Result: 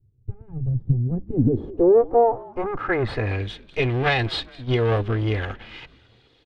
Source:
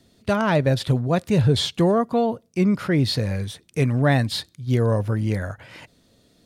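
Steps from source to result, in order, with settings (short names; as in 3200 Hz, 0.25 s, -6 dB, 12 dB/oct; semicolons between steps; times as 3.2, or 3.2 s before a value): minimum comb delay 2.4 ms; frequency-shifting echo 0.206 s, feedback 54%, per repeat -56 Hz, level -22.5 dB; low-pass sweep 120 Hz -> 3200 Hz, 0.71–3.54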